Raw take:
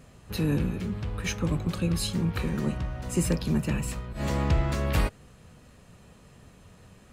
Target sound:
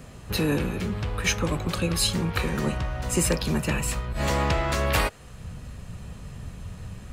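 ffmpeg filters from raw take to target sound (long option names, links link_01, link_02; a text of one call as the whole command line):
ffmpeg -i in.wav -filter_complex "[0:a]asubboost=boost=3:cutoff=170,acrossover=split=330|5800[link_01][link_02][link_03];[link_01]acompressor=threshold=-36dB:ratio=5[link_04];[link_04][link_02][link_03]amix=inputs=3:normalize=0,volume=8dB" out.wav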